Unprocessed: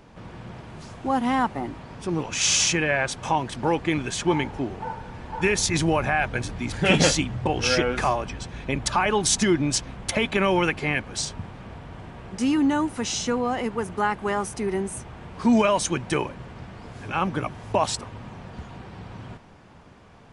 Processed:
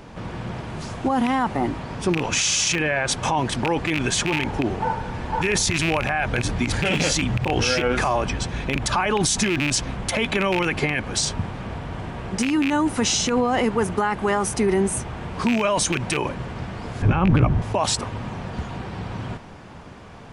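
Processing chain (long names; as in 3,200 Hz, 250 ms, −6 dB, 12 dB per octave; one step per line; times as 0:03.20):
loose part that buzzes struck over −24 dBFS, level −10 dBFS
in parallel at +0.5 dB: compressor whose output falls as the input rises −26 dBFS, ratio −0.5
on the sum: brickwall limiter −11.5 dBFS, peak gain reduction 10.5 dB
0:17.02–0:17.62: RIAA equalisation playback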